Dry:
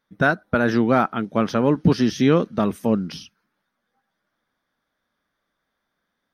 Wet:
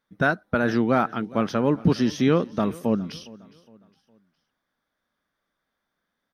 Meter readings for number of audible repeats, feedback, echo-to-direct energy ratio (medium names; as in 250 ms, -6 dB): 2, 40%, -21.0 dB